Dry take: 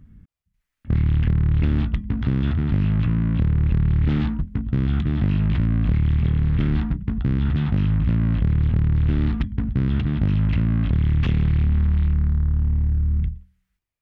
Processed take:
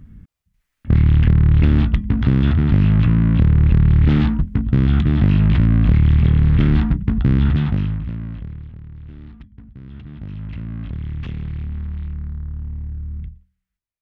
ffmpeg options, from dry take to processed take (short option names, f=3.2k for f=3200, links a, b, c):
-af "volume=15.5dB,afade=t=out:st=7.42:d=0.6:silence=0.251189,afade=t=out:st=8.02:d=0.7:silence=0.266073,afade=t=in:st=9.79:d=1.03:silence=0.334965"